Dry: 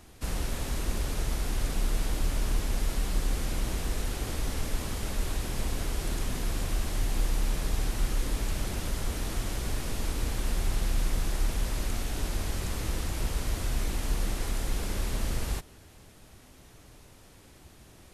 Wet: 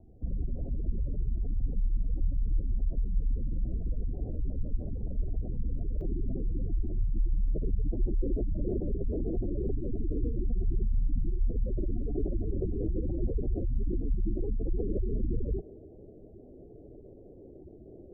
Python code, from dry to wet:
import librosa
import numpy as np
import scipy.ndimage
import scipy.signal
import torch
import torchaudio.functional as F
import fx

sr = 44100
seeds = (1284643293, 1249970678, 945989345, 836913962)

y = fx.spec_gate(x, sr, threshold_db=-20, keep='strong')
y = scipy.signal.sosfilt(scipy.signal.butter(8, 680.0, 'lowpass', fs=sr, output='sos'), y)
y = fx.peak_eq(y, sr, hz=390.0, db=fx.steps((0.0, -2.5), (6.01, 6.0), (7.48, 13.5)), octaves=1.1)